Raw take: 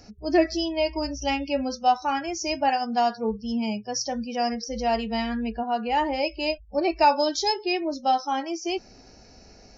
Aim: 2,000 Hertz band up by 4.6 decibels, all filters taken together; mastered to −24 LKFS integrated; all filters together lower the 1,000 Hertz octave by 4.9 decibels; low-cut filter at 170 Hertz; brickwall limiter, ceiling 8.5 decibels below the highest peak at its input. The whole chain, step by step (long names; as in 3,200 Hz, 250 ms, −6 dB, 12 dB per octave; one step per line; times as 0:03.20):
high-pass filter 170 Hz
parametric band 1,000 Hz −8.5 dB
parametric band 2,000 Hz +8 dB
level +4.5 dB
brickwall limiter −13.5 dBFS